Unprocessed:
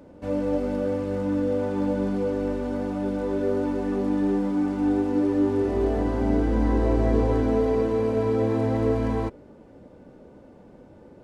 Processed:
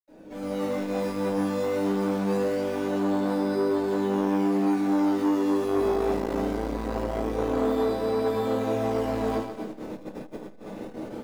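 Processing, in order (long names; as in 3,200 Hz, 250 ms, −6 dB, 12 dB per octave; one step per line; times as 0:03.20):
parametric band 77 Hz −2.5 dB 2.3 octaves
in parallel at −11.5 dB: sample-and-hold swept by an LFO 20×, swing 100% 0.22 Hz
on the sum: downward compressor 5 to 1, threshold −35 dBFS, peak gain reduction 17.5 dB
convolution reverb RT60 0.50 s, pre-delay 77 ms
automatic gain control gain up to 16 dB
feedback echo with a high-pass in the loop 132 ms, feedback 63%, high-pass 260 Hz, level −8 dB
saturating transformer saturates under 500 Hz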